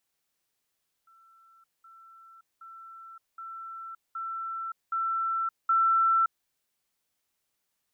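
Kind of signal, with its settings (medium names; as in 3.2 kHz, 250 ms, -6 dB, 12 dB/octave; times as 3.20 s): level ladder 1.34 kHz -56 dBFS, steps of 6 dB, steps 7, 0.57 s 0.20 s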